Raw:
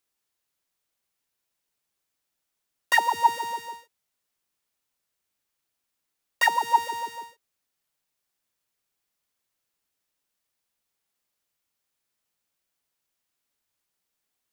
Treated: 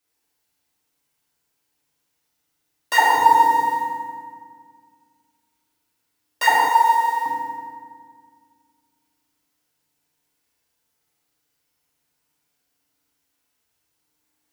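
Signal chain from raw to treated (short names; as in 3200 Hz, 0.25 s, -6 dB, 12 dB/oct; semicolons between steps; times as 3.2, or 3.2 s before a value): FDN reverb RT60 1.9 s, low-frequency decay 1.45×, high-frequency decay 0.7×, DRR -8.5 dB; dynamic EQ 2700 Hz, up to -4 dB, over -26 dBFS, Q 1; 6.69–7.26 Bessel high-pass 660 Hz, order 4; gain -1 dB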